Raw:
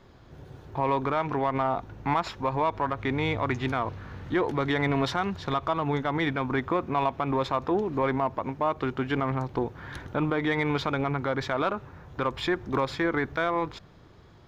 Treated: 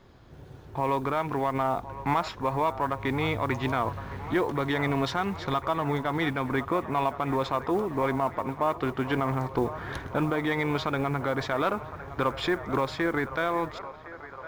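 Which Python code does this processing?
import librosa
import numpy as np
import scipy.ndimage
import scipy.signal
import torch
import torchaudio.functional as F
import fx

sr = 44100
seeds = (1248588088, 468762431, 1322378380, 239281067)

p1 = fx.rider(x, sr, range_db=10, speed_s=0.5)
p2 = x + (p1 * 10.0 ** (2.0 / 20.0))
p3 = fx.mod_noise(p2, sr, seeds[0], snr_db=31)
p4 = fx.echo_wet_bandpass(p3, sr, ms=1062, feedback_pct=70, hz=980.0, wet_db=-12.5)
y = p4 * 10.0 ** (-7.5 / 20.0)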